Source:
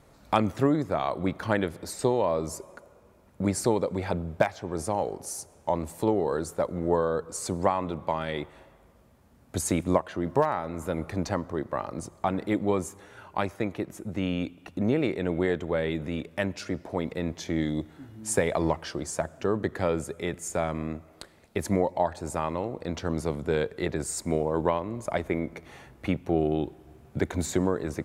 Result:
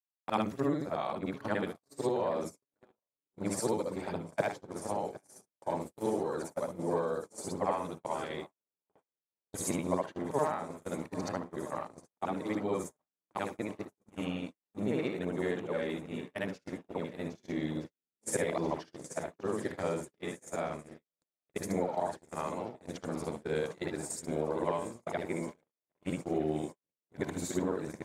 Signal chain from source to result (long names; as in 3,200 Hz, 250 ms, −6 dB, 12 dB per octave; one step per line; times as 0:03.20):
every overlapping window played backwards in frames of 156 ms
high-pass filter 130 Hz 12 dB per octave
high-shelf EQ 5,900 Hz +2.5 dB
on a send: feedback echo with a long and a short gap by turns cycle 1,265 ms, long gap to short 1.5 to 1, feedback 69%, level −15 dB
on the sum: noise gate −34 dBFS, range −59 dB
level −3.5 dB